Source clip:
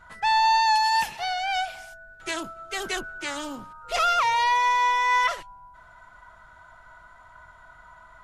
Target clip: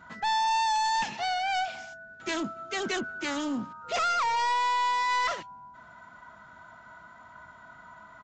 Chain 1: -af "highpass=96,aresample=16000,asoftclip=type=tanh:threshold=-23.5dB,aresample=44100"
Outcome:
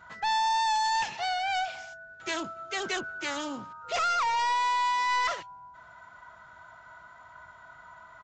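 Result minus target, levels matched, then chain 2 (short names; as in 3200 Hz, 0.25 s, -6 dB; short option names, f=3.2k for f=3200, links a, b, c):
250 Hz band -6.5 dB
-af "highpass=96,equalizer=f=230:t=o:w=0.97:g=11.5,aresample=16000,asoftclip=type=tanh:threshold=-23.5dB,aresample=44100"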